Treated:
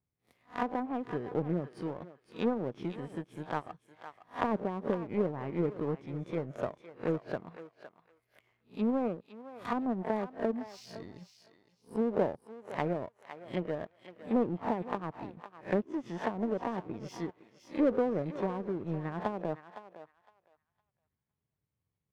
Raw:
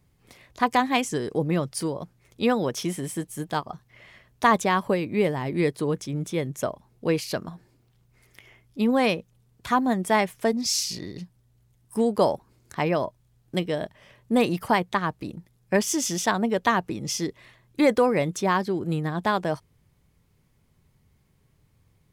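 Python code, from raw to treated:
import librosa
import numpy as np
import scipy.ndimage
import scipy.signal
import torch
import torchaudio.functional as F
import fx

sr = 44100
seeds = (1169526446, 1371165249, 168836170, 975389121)

y = fx.spec_swells(x, sr, rise_s=0.32)
y = scipy.signal.sosfilt(scipy.signal.butter(2, 66.0, 'highpass', fs=sr, output='sos'), y)
y = fx.peak_eq(y, sr, hz=6300.0, db=-9.5, octaves=1.6)
y = fx.env_lowpass_down(y, sr, base_hz=550.0, full_db=-19.0)
y = fx.power_curve(y, sr, exponent=1.4)
y = fx.echo_thinned(y, sr, ms=511, feedback_pct=20, hz=840.0, wet_db=-9.5)
y = y * librosa.db_to_amplitude(-3.0)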